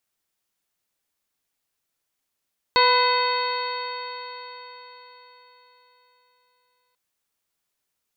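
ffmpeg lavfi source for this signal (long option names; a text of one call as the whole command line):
ffmpeg -f lavfi -i "aevalsrc='0.0841*pow(10,-3*t/4.41)*sin(2*PI*493.86*t)+0.158*pow(10,-3*t/4.41)*sin(2*PI*992.88*t)+0.0501*pow(10,-3*t/4.41)*sin(2*PI*1502.11*t)+0.0596*pow(10,-3*t/4.41)*sin(2*PI*2026.46*t)+0.0447*pow(10,-3*t/4.41)*sin(2*PI*2570.58*t)+0.0211*pow(10,-3*t/4.41)*sin(2*PI*3138.83*t)+0.0531*pow(10,-3*t/4.41)*sin(2*PI*3735.22*t)+0.0841*pow(10,-3*t/4.41)*sin(2*PI*4363.43*t)':duration=4.19:sample_rate=44100" out.wav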